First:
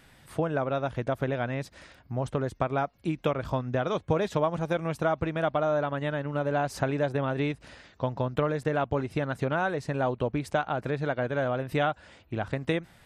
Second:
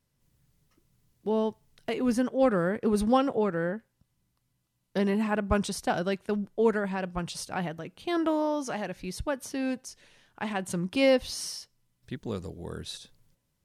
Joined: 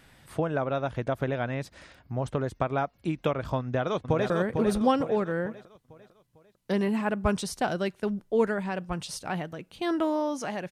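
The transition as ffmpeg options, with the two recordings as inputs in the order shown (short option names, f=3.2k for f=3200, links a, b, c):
-filter_complex "[0:a]apad=whole_dur=10.71,atrim=end=10.71,atrim=end=4.302[a];[1:a]atrim=start=2.558:end=8.97[b];[a][b]acrossfade=d=0.004:c1=hsin:c2=hsin,asplit=2[c][d];[d]afade=t=in:st=3.59:d=0.01,afade=t=out:st=4.3:d=0.01,aecho=0:1:450|900|1350|1800|2250:0.530884|0.238898|0.107504|0.0483768|0.0217696[e];[c][e]amix=inputs=2:normalize=0"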